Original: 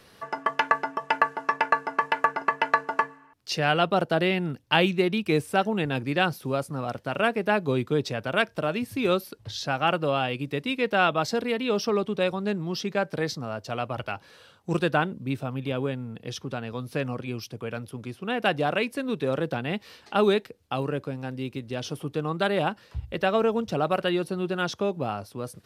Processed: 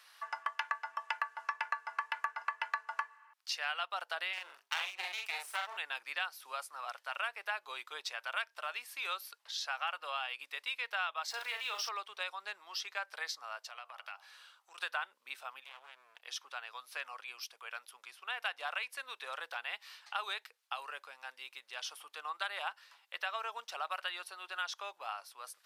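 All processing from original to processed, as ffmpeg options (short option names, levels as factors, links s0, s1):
-filter_complex "[0:a]asettb=1/sr,asplit=3[s0][s1][s2];[s0]atrim=end=4.334[s3];[s1]atrim=start=4.33:end=5.77,asetpts=PTS-STARTPTS,afade=t=in:d=0.004:c=qsin,afade=t=out:st=1.436:d=0.004:c=qsin,bandreject=f=50:t=h:w=6,bandreject=f=100:t=h:w=6,bandreject=f=150:t=h:w=6,bandreject=f=200:t=h:w=6,bandreject=f=250:t=h:w=6,bandreject=f=300:t=h:w=6,aeval=exprs='max(val(0),0)':c=same,asplit=2[s4][s5];[s5]adelay=43,volume=0.708[s6];[s4][s6]amix=inputs=2:normalize=0,atrim=end_sample=63504[s7];[s2]atrim=start=5.766[s8];[s3][s7]acrossfade=d=0.004:c1=hsin:c2=qsin[s9];[s9][s8]acrossfade=d=0.004:c1=qsin:c2=hsin,asettb=1/sr,asplit=3[s10][s11][s12];[s10]atrim=end=11.304[s13];[s11]atrim=start=11.3:end=11.89,asetpts=PTS-STARTPTS,afade=t=in:d=0.004:c=qsin,afade=t=out:st=0.586:d=0.004:c=qsin,aeval=exprs='val(0)+0.5*0.00944*sgn(val(0))':c=same,asplit=2[s14][s15];[s15]adelay=38,volume=0.531[s16];[s14][s16]amix=inputs=2:normalize=0,atrim=end_sample=26019[s17];[s12]atrim=start=11.886[s18];[s13][s17]acrossfade=d=0.004:c1=hsin:c2=qsin[s19];[s19][s18]acrossfade=d=0.004:c1=qsin:c2=hsin,asettb=1/sr,asplit=3[s20][s21][s22];[s20]atrim=end=13.594[s23];[s21]atrim=start=13.59:end=14.78,asetpts=PTS-STARTPTS,afade=t=in:d=0.004:c=qsin,afade=t=out:st=1.186:d=0.004:c=qsin,acompressor=threshold=0.02:ratio=6:attack=3.2:release=140:knee=1:detection=peak,bandreject=f=78.87:t=h:w=4,bandreject=f=157.74:t=h:w=4,bandreject=f=236.61:t=h:w=4,bandreject=f=315.48:t=h:w=4,bandreject=f=394.35:t=h:w=4,bandreject=f=473.22:t=h:w=4,bandreject=f=552.09:t=h:w=4,bandreject=f=630.96:t=h:w=4,bandreject=f=709.83:t=h:w=4,bandreject=f=788.7:t=h:w=4,bandreject=f=867.57:t=h:w=4,bandreject=f=946.44:t=h:w=4,bandreject=f=1025.31:t=h:w=4,bandreject=f=1104.18:t=h:w=4,bandreject=f=1183.05:t=h:w=4,bandreject=f=1261.92:t=h:w=4,bandreject=f=1340.79:t=h:w=4[s24];[s22]atrim=start=14.776[s25];[s23][s24]acrossfade=d=0.004:c1=hsin:c2=qsin[s26];[s26][s25]acrossfade=d=0.004:c1=qsin:c2=hsin,asettb=1/sr,asplit=3[s27][s28][s29];[s27]atrim=end=15.644[s30];[s28]atrim=start=15.64:end=16.22,asetpts=PTS-STARTPTS,afade=t=in:d=0.004:c=qsin,afade=t=out:st=0.576:d=0.004:c=qsin,acompressor=threshold=0.0251:ratio=10:attack=3.2:release=140:knee=1:detection=peak,aeval=exprs='max(val(0),0)':c=same[s31];[s29]atrim=start=16.216[s32];[s30][s31]acrossfade=d=0.004:c1=hsin:c2=qsin[s33];[s33][s32]acrossfade=d=0.004:c1=qsin:c2=hsin,highpass=f=940:w=0.5412,highpass=f=940:w=1.3066,acompressor=threshold=0.0282:ratio=3,volume=0.668"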